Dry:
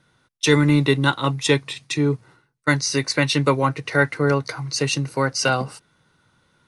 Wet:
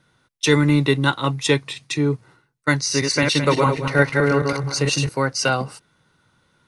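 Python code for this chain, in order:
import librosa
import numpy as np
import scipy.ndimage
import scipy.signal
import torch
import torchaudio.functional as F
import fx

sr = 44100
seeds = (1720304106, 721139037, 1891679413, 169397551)

y = fx.reverse_delay_fb(x, sr, ms=108, feedback_pct=46, wet_db=-3, at=(2.8, 5.09))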